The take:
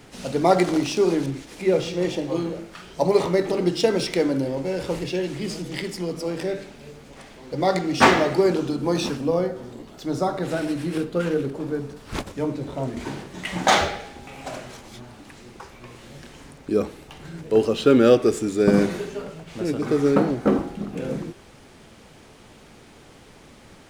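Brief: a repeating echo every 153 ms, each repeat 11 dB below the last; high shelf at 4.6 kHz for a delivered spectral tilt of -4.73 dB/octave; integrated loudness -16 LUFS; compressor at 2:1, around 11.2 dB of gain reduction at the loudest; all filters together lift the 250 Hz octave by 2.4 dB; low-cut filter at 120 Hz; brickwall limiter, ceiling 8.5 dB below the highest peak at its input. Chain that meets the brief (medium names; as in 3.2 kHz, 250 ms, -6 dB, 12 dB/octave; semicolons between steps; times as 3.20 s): high-pass 120 Hz; peaking EQ 250 Hz +3.5 dB; treble shelf 4.6 kHz +9 dB; compression 2:1, threshold -30 dBFS; peak limiter -19 dBFS; feedback delay 153 ms, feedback 28%, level -11 dB; trim +14.5 dB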